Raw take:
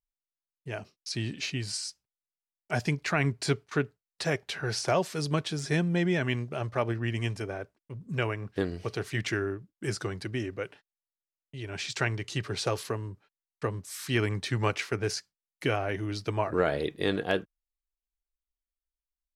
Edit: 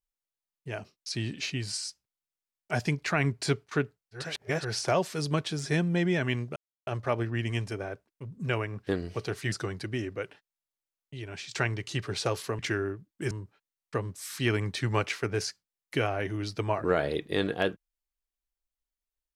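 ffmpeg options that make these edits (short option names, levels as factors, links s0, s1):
-filter_complex "[0:a]asplit=8[s0][s1][s2][s3][s4][s5][s6][s7];[s0]atrim=end=4.35[s8];[s1]atrim=start=4.11:end=4.74,asetpts=PTS-STARTPTS,areverse[s9];[s2]atrim=start=4.5:end=6.56,asetpts=PTS-STARTPTS,afade=t=out:st=2.056:d=0.004:c=hsin,apad=pad_dur=0.31[s10];[s3]atrim=start=6.56:end=9.212,asetpts=PTS-STARTPTS,afade=t=in:d=0.004:c=hsin[s11];[s4]atrim=start=9.928:end=11.92,asetpts=PTS-STARTPTS,afade=t=out:st=1.632:d=0.36:silence=0.354813[s12];[s5]atrim=start=11.92:end=13.002,asetpts=PTS-STARTPTS,afade=t=in:d=0.004:c=hsin:silence=0.354813[s13];[s6]atrim=start=9.208:end=9.932[s14];[s7]atrim=start=12.998[s15];[s8][s9]acrossfade=d=0.24:c1=tri:c2=tri[s16];[s10][s11]concat=n=2:v=0:a=1[s17];[s16][s17]acrossfade=d=0.24:c1=tri:c2=tri[s18];[s12][s13]concat=n=2:v=0:a=1[s19];[s18][s19]acrossfade=d=0.004:c1=hsin:c2=hsin[s20];[s20][s14]acrossfade=d=0.004:c1=hsin:c2=hsin[s21];[s21][s15]acrossfade=d=0.004:c1=hsin:c2=hsin"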